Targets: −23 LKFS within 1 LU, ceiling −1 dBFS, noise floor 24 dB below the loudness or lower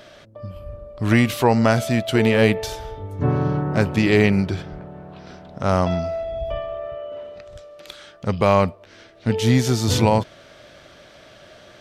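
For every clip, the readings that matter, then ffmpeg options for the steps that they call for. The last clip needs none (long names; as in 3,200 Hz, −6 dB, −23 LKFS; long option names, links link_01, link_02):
integrated loudness −20.0 LKFS; sample peak −4.5 dBFS; target loudness −23.0 LKFS
→ -af "volume=-3dB"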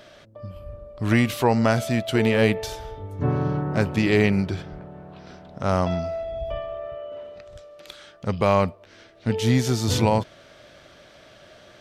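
integrated loudness −23.0 LKFS; sample peak −7.5 dBFS; background noise floor −51 dBFS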